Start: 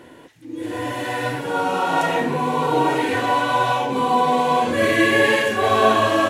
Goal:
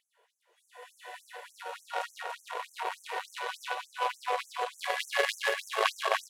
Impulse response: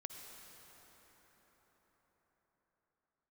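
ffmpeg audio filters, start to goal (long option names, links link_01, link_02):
-af "aecho=1:1:290|464|568.4|631|668.6:0.631|0.398|0.251|0.158|0.1,aeval=exprs='1*(cos(1*acos(clip(val(0)/1,-1,1)))-cos(1*PI/2))+0.282*(cos(3*acos(clip(val(0)/1,-1,1)))-cos(3*PI/2))+0.00794*(cos(7*acos(clip(val(0)/1,-1,1)))-cos(7*PI/2))':channel_layout=same,afftfilt=real='re*gte(b*sr/1024,360*pow(5900/360,0.5+0.5*sin(2*PI*3.4*pts/sr)))':imag='im*gte(b*sr/1024,360*pow(5900/360,0.5+0.5*sin(2*PI*3.4*pts/sr)))':win_size=1024:overlap=0.75"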